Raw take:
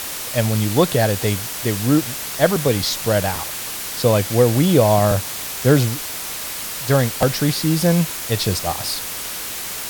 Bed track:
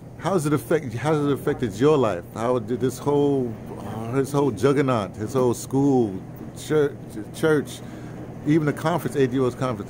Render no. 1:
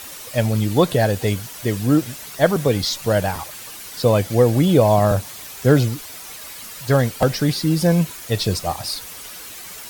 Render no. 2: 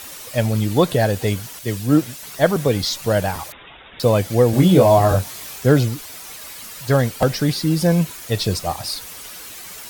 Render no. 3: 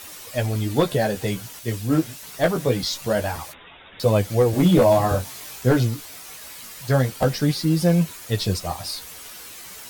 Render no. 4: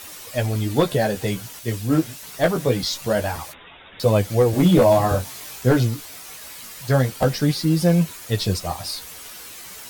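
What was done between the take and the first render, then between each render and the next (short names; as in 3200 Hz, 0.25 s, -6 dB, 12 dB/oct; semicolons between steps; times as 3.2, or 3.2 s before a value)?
denoiser 10 dB, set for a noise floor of -29 dBFS
1.59–2.23 three-band expander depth 70%; 3.52–4 inverted band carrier 3700 Hz; 4.51–5.59 doubler 22 ms -2.5 dB
one-sided fold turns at -7 dBFS; flange 0.24 Hz, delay 9.5 ms, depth 9.4 ms, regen -15%
gain +1 dB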